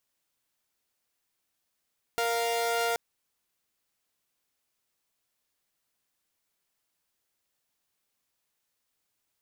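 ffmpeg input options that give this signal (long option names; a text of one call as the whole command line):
ffmpeg -f lavfi -i "aevalsrc='0.0473*((2*mod(466.16*t,1)-1)+(2*mod(698.46*t,1)-1))':duration=0.78:sample_rate=44100" out.wav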